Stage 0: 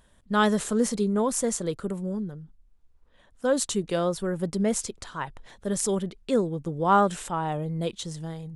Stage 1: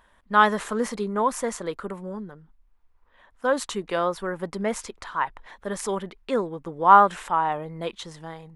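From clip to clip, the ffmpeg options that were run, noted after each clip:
ffmpeg -i in.wav -af "equalizer=frequency=125:width_type=o:width=1:gain=-10,equalizer=frequency=1000:width_type=o:width=1:gain=10,equalizer=frequency=2000:width_type=o:width=1:gain=7,equalizer=frequency=8000:width_type=o:width=1:gain=-6,volume=-2dB" out.wav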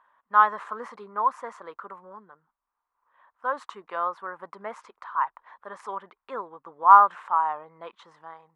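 ffmpeg -i in.wav -af "bandpass=frequency=1100:width_type=q:width=2.8:csg=0,volume=2.5dB" out.wav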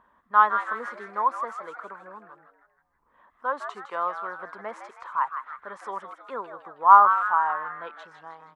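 ffmpeg -i in.wav -filter_complex "[0:a]asplit=6[link_01][link_02][link_03][link_04][link_05][link_06];[link_02]adelay=159,afreqshift=130,volume=-9dB[link_07];[link_03]adelay=318,afreqshift=260,volume=-15.6dB[link_08];[link_04]adelay=477,afreqshift=390,volume=-22.1dB[link_09];[link_05]adelay=636,afreqshift=520,volume=-28.7dB[link_10];[link_06]adelay=795,afreqshift=650,volume=-35.2dB[link_11];[link_01][link_07][link_08][link_09][link_10][link_11]amix=inputs=6:normalize=0,acrossover=split=330[link_12][link_13];[link_12]acompressor=mode=upward:threshold=-56dB:ratio=2.5[link_14];[link_14][link_13]amix=inputs=2:normalize=0" out.wav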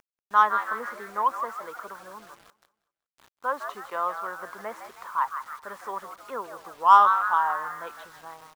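ffmpeg -i in.wav -filter_complex "[0:a]asplit=2[link_01][link_02];[link_02]asoftclip=type=tanh:threshold=-14.5dB,volume=-6dB[link_03];[link_01][link_03]amix=inputs=2:normalize=0,acrusher=bits=7:mix=0:aa=0.000001,aecho=1:1:188|376|564:0.0794|0.0318|0.0127,volume=-3.5dB" out.wav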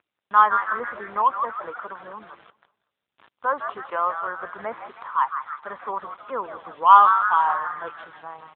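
ffmpeg -i in.wav -filter_complex "[0:a]asplit=2[link_01][link_02];[link_02]asoftclip=type=tanh:threshold=-22dB,volume=-9dB[link_03];[link_01][link_03]amix=inputs=2:normalize=0,volume=3dB" -ar 8000 -c:a libopencore_amrnb -b:a 7950 out.amr

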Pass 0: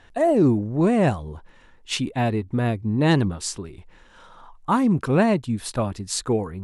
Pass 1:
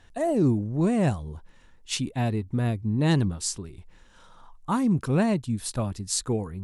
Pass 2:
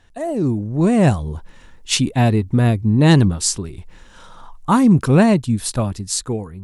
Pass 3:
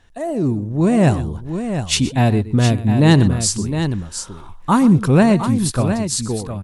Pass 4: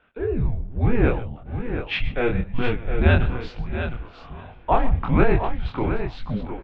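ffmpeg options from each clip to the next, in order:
ffmpeg -i in.wav -af "bass=frequency=250:gain=6,treble=frequency=4000:gain=8,volume=-7dB" out.wav
ffmpeg -i in.wav -af "dynaudnorm=framelen=240:gausssize=7:maxgain=11.5dB,volume=1dB" out.wav
ffmpeg -i in.wav -af "aecho=1:1:122|711:0.158|0.376" out.wav
ffmpeg -i in.wav -af "aecho=1:1:648|1296|1944|2592:0.0841|0.0421|0.021|0.0105,flanger=delay=20:depth=6.9:speed=1.1,highpass=frequency=210:width_type=q:width=0.5412,highpass=frequency=210:width_type=q:width=1.307,lowpass=frequency=3200:width_type=q:width=0.5176,lowpass=frequency=3200:width_type=q:width=0.7071,lowpass=frequency=3200:width_type=q:width=1.932,afreqshift=-240,volume=2dB" out.wav

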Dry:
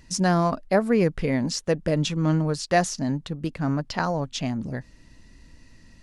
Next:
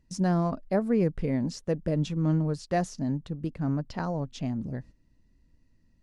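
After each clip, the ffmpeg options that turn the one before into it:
ffmpeg -i in.wav -af "agate=range=-11dB:threshold=-43dB:ratio=16:detection=peak,tiltshelf=frequency=720:gain=5.5,volume=-7.5dB" out.wav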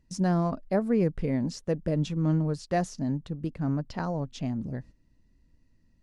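ffmpeg -i in.wav -af anull out.wav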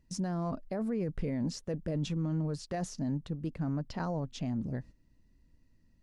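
ffmpeg -i in.wav -af "alimiter=limit=-24dB:level=0:latency=1:release=10,volume=-1.5dB" out.wav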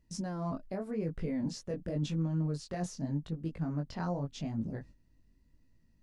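ffmpeg -i in.wav -af "flanger=delay=18:depth=4.7:speed=0.86,volume=1.5dB" out.wav

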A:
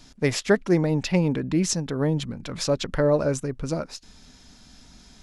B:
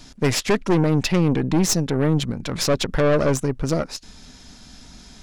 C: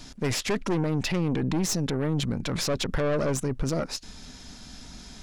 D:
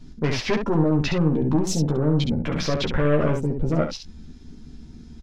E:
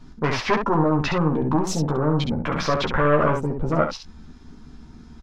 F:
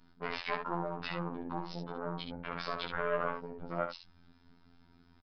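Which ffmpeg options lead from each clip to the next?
ffmpeg -i in.wav -af "aeval=exprs='(tanh(14.1*val(0)+0.6)-tanh(0.6))/14.1':channel_layout=same,volume=9dB" out.wav
ffmpeg -i in.wav -af "alimiter=limit=-18.5dB:level=0:latency=1:release=12" out.wav
ffmpeg -i in.wav -af "afwtdn=0.0141,highshelf=frequency=6400:gain=-9,aecho=1:1:13|68:0.631|0.531,volume=3dB" out.wav
ffmpeg -i in.wav -af "equalizer=frequency=1100:width=0.97:gain=12.5,volume=-2dB" out.wav
ffmpeg -i in.wav -af "aresample=11025,aresample=44100,afftfilt=real='hypot(re,im)*cos(PI*b)':imag='0':win_size=2048:overlap=0.75,lowshelf=frequency=420:gain=-9.5,volume=-8dB" out.wav

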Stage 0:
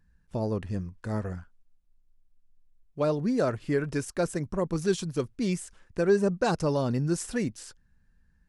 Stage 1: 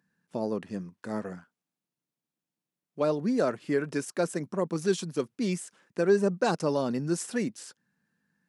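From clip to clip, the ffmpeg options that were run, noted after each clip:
ffmpeg -i in.wav -af "highpass=frequency=170:width=0.5412,highpass=frequency=170:width=1.3066" out.wav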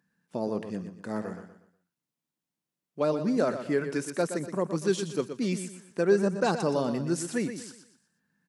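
ffmpeg -i in.wav -af "aecho=1:1:121|242|363|484:0.335|0.117|0.041|0.0144" out.wav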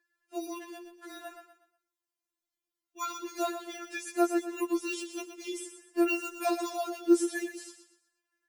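ffmpeg -i in.wav -filter_complex "[0:a]acrossover=split=280|660|4600[link_01][link_02][link_03][link_04];[link_02]acrusher=samples=14:mix=1:aa=0.000001[link_05];[link_01][link_05][link_03][link_04]amix=inputs=4:normalize=0,afftfilt=real='re*4*eq(mod(b,16),0)':imag='im*4*eq(mod(b,16),0)':win_size=2048:overlap=0.75" out.wav

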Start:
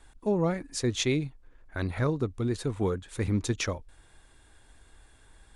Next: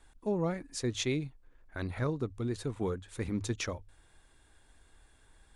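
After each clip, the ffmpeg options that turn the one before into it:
ffmpeg -i in.wav -af "bandreject=frequency=50:width_type=h:width=6,bandreject=frequency=100:width_type=h:width=6,volume=-5dB" out.wav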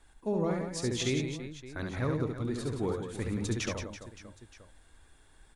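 ffmpeg -i in.wav -af "aecho=1:1:70|175|332.5|568.8|923.1:0.631|0.398|0.251|0.158|0.1" out.wav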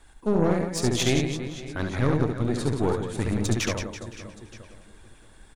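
ffmpeg -i in.wav -filter_complex "[0:a]aeval=exprs='0.126*(cos(1*acos(clip(val(0)/0.126,-1,1)))-cos(1*PI/2))+0.0224*(cos(4*acos(clip(val(0)/0.126,-1,1)))-cos(4*PI/2))':channel_layout=same,asplit=2[link_01][link_02];[link_02]adelay=516,lowpass=frequency=3900:poles=1,volume=-18dB,asplit=2[link_03][link_04];[link_04]adelay=516,lowpass=frequency=3900:poles=1,volume=0.45,asplit=2[link_05][link_06];[link_06]adelay=516,lowpass=frequency=3900:poles=1,volume=0.45,asplit=2[link_07][link_08];[link_08]adelay=516,lowpass=frequency=3900:poles=1,volume=0.45[link_09];[link_01][link_03][link_05][link_07][link_09]amix=inputs=5:normalize=0,volume=7dB" out.wav

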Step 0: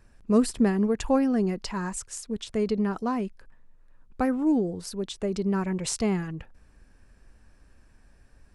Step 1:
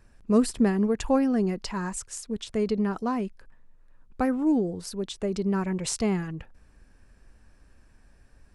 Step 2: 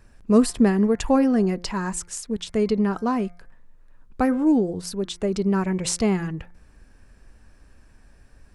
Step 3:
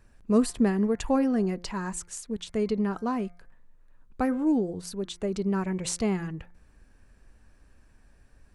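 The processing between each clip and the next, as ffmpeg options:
ffmpeg -i in.wav -af anull out.wav
ffmpeg -i in.wav -af "bandreject=frequency=175.4:width_type=h:width=4,bandreject=frequency=350.8:width_type=h:width=4,bandreject=frequency=526.2:width_type=h:width=4,bandreject=frequency=701.6:width_type=h:width=4,bandreject=frequency=877:width_type=h:width=4,bandreject=frequency=1052.4:width_type=h:width=4,bandreject=frequency=1227.8:width_type=h:width=4,bandreject=frequency=1403.2:width_type=h:width=4,bandreject=frequency=1578.6:width_type=h:width=4,bandreject=frequency=1754:width_type=h:width=4,bandreject=frequency=1929.4:width_type=h:width=4,bandreject=frequency=2104.8:width_type=h:width=4,bandreject=frequency=2280.2:width_type=h:width=4,volume=4.5dB" out.wav
ffmpeg -i in.wav -af "bandreject=frequency=5200:width=18,volume=-5.5dB" out.wav

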